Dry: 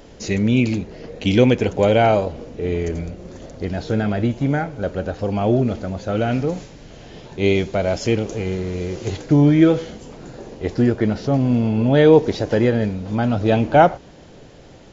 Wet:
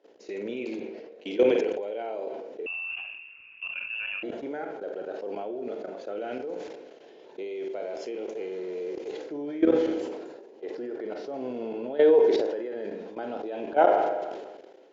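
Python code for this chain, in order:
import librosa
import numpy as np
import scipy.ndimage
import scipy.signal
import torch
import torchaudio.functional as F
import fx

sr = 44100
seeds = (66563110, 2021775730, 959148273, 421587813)

y = fx.ladder_highpass(x, sr, hz=340.0, resonance_pct=50)
y = fx.air_absorb(y, sr, metres=110.0)
y = fx.notch(y, sr, hz=1200.0, q=13.0)
y = fx.room_flutter(y, sr, wall_m=8.4, rt60_s=0.3)
y = fx.level_steps(y, sr, step_db=17)
y = fx.rev_spring(y, sr, rt60_s=1.2, pass_ms=(31, 39), chirp_ms=70, drr_db=14.0)
y = fx.freq_invert(y, sr, carrier_hz=3100, at=(2.66, 4.23))
y = fx.sustainer(y, sr, db_per_s=39.0)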